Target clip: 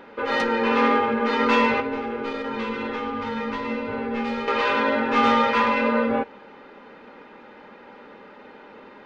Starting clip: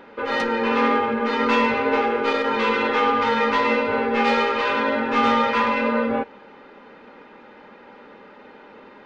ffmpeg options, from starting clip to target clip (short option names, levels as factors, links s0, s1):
-filter_complex "[0:a]asettb=1/sr,asplit=3[s0][s1][s2];[s0]atrim=end=1.804[s3];[s1]atrim=start=1.8:end=4.48,asetpts=PTS-STARTPTS,afade=t=in:d=0.004:c=qsin,afade=t=out:st=2.676:d=0.004:c=qsin,acrossover=split=270[s4][s5];[s5]acompressor=threshold=0.0355:ratio=6[s6];[s4][s6]amix=inputs=2:normalize=0[s7];[s2]atrim=start=4.476[s8];[s3][s7]acrossfade=d=0.004:c1=hsin:c2=qsin[s9];[s9][s8]acrossfade=d=0.004:c1=qsin:c2=hsin"